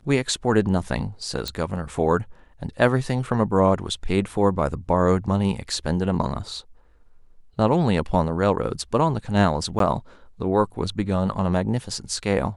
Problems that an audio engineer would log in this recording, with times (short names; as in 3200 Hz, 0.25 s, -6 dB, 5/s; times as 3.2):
1.48 pop -12 dBFS
9.79–9.8 gap 13 ms